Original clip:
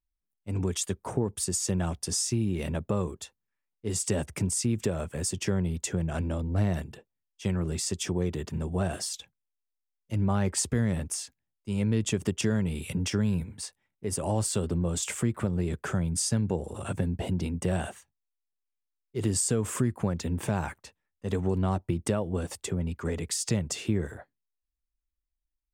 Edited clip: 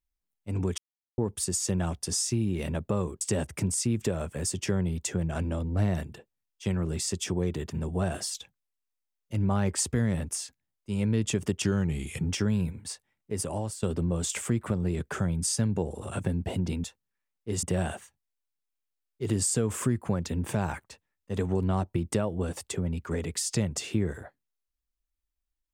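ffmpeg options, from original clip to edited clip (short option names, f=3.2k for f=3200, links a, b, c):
-filter_complex "[0:a]asplit=9[a][b][c][d][e][f][g][h][i];[a]atrim=end=0.78,asetpts=PTS-STARTPTS,afade=t=out:st=0.776:d=0.004:c=hsin[j];[b]atrim=start=0.78:end=1.18,asetpts=PTS-STARTPTS,volume=0[k];[c]atrim=start=1.18:end=3.212,asetpts=PTS-STARTPTS,afade=t=in:d=0.004:c=hsin[l];[d]atrim=start=3.998:end=12.434[m];[e]atrim=start=12.43:end=13.02,asetpts=PTS-STARTPTS,asetrate=40131,aresample=44100,atrim=end_sample=28592,asetpts=PTS-STARTPTS[n];[f]atrim=start=13.016:end=14.56,asetpts=PTS-STARTPTS,afade=t=out:st=1.094:d=0.45:silence=0.188365[o];[g]atrim=start=14.56:end=17.572,asetpts=PTS-STARTPTS,afade=t=in:d=0.004:c=hsin:silence=0.188365[p];[h]atrim=start=3.208:end=4.002[q];[i]atrim=start=17.568[r];[j][k][l]concat=n=3:v=0:a=1[s];[s][m]acrossfade=d=0.004:c1=hsin:c2=hsin[t];[t][n]acrossfade=d=0.004:c1=hsin:c2=hsin[u];[o][p]concat=n=2:v=0:a=1[v];[u][v]acrossfade=d=0.004:c1=hsin:c2=hsin[w];[w][q]acrossfade=d=0.004:c1=hsin:c2=hsin[x];[x][r]acrossfade=d=0.004:c1=hsin:c2=hsin"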